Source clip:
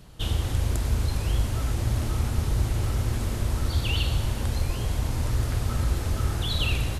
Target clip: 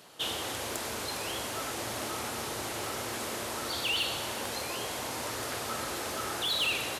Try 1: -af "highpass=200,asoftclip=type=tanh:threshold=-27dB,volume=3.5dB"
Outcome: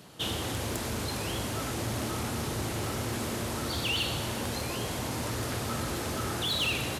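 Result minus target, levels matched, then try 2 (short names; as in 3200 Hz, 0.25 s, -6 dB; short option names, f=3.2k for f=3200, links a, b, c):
250 Hz band +6.0 dB
-af "highpass=440,asoftclip=type=tanh:threshold=-27dB,volume=3.5dB"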